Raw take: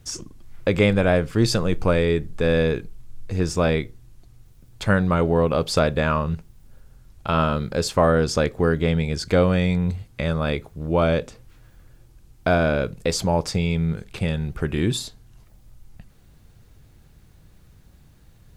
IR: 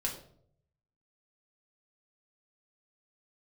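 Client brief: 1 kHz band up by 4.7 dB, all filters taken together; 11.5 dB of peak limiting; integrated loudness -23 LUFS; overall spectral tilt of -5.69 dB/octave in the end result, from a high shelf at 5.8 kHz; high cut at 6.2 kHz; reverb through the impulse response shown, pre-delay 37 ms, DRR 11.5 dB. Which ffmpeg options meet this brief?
-filter_complex "[0:a]lowpass=6200,equalizer=f=1000:t=o:g=6.5,highshelf=f=5800:g=-5.5,alimiter=limit=0.211:level=0:latency=1,asplit=2[s0][s1];[1:a]atrim=start_sample=2205,adelay=37[s2];[s1][s2]afir=irnorm=-1:irlink=0,volume=0.188[s3];[s0][s3]amix=inputs=2:normalize=0,volume=1.19"

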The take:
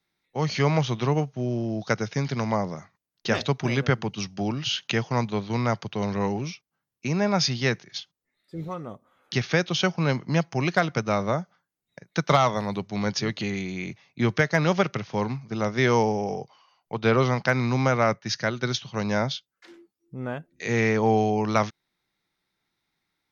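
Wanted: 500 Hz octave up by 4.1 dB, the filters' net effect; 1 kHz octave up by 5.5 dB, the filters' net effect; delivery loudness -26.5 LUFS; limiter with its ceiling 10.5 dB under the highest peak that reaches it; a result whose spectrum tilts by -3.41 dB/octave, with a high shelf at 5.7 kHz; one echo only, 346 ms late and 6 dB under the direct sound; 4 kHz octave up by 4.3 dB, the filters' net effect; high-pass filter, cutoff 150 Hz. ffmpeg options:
-af "highpass=150,equalizer=f=500:t=o:g=3.5,equalizer=f=1000:t=o:g=6,equalizer=f=4000:t=o:g=8.5,highshelf=f=5700:g=-8.5,alimiter=limit=0.266:level=0:latency=1,aecho=1:1:346:0.501,volume=0.841"

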